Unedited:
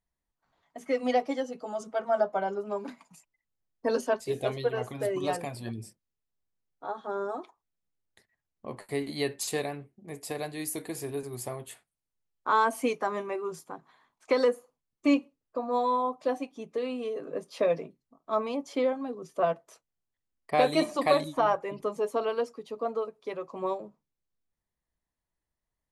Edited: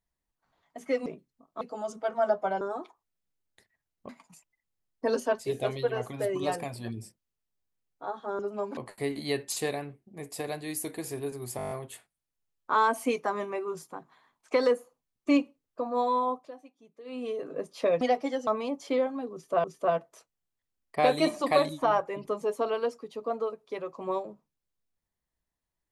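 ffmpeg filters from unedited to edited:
-filter_complex "[0:a]asplit=19[s0][s1][s2][s3][s4][s5][s6][s7][s8][s9][s10][s11][s12][s13][s14][s15][s16][s17][s18];[s0]atrim=end=1.062[s19];[s1]atrim=start=17.778:end=18.332[s20];[s2]atrim=start=1.518:end=2.522[s21];[s3]atrim=start=7.198:end=8.682[s22];[s4]atrim=start=2.898:end=7.202[s23];[s5]atrim=start=2.518:end=2.902[s24];[s6]atrim=start=8.678:end=11.502[s25];[s7]atrim=start=11.478:end=11.502[s26];[s8]atrim=start=11.478:end=11.502[s27];[s9]atrim=start=11.478:end=11.502[s28];[s10]atrim=start=11.478:end=11.502[s29];[s11]atrim=start=11.478:end=11.502[s30];[s12]atrim=start=11.478:end=11.502[s31];[s13]atrim=start=11.478:end=16.28,asetpts=PTS-STARTPTS,afade=t=out:st=4.622:d=0.18:silence=0.141254[s32];[s14]atrim=start=16.28:end=16.81,asetpts=PTS-STARTPTS,volume=0.141[s33];[s15]atrim=start=16.81:end=17.782,asetpts=PTS-STARTPTS,afade=t=in:d=0.18:silence=0.141254[s34];[s16]atrim=start=1.058:end=1.522[s35];[s17]atrim=start=18.328:end=19.502[s36];[s18]atrim=start=19.188[s37];[s19][s20]acrossfade=d=0.004:c1=hsin:c2=hsin[s38];[s38][s21]acrossfade=d=0.004:c1=hsin:c2=hsin[s39];[s39][s22]acrossfade=d=0.004:c1=hsin:c2=hsin[s40];[s40][s23]acrossfade=d=0.004:c1=hsin:c2=hsin[s41];[s41][s24]acrossfade=d=0.004:c1=hsin:c2=hsin[s42];[s42][s25]acrossfade=d=0.004:c1=hsin:c2=hsin[s43];[s43][s26]acrossfade=d=0.004:c1=hsin:c2=hsin[s44];[s44][s27]acrossfade=d=0.004:c1=hsin:c2=hsin[s45];[s45][s28]acrossfade=d=0.004:c1=hsin:c2=hsin[s46];[s46][s29]acrossfade=d=0.004:c1=hsin:c2=hsin[s47];[s47][s30]acrossfade=d=0.004:c1=hsin:c2=hsin[s48];[s48][s31]acrossfade=d=0.004:c1=hsin:c2=hsin[s49];[s32][s33][s34]concat=n=3:v=0:a=1[s50];[s49][s50]acrossfade=d=0.004:c1=hsin:c2=hsin[s51];[s51][s35]acrossfade=d=0.004:c1=hsin:c2=hsin[s52];[s52][s36]acrossfade=d=0.004:c1=hsin:c2=hsin[s53];[s53][s37]acrossfade=d=0.004:c1=hsin:c2=hsin"

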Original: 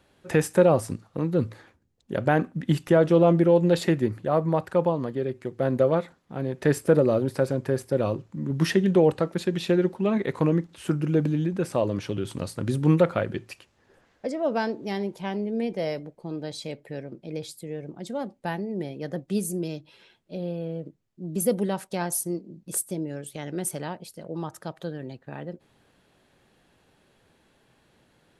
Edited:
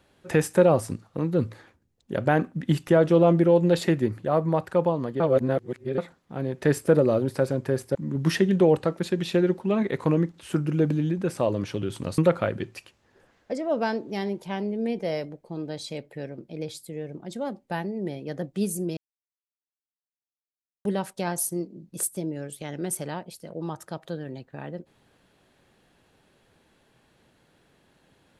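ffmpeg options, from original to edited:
-filter_complex "[0:a]asplit=7[s0][s1][s2][s3][s4][s5][s6];[s0]atrim=end=5.202[s7];[s1]atrim=start=5.198:end=5.982,asetpts=PTS-STARTPTS,areverse[s8];[s2]atrim=start=5.978:end=7.952[s9];[s3]atrim=start=8.298:end=12.532[s10];[s4]atrim=start=12.918:end=19.71,asetpts=PTS-STARTPTS,afade=t=out:st=6.788:d=0.004:c=hsin[s11];[s5]atrim=start=19.71:end=21.59,asetpts=PTS-STARTPTS,volume=0[s12];[s6]atrim=start=21.59,asetpts=PTS-STARTPTS,afade=t=in:d=0.004:c=hsin[s13];[s7][s8]acrossfade=d=0.004:c1=hsin:c2=hsin[s14];[s14][s9]acrossfade=d=0.004:c1=hsin:c2=hsin[s15];[s15][s10]acrossfade=d=0.004:c1=hsin:c2=hsin[s16];[s11][s12][s13]concat=n=3:v=0:a=1[s17];[s16][s17]acrossfade=d=0.004:c1=hsin:c2=hsin"

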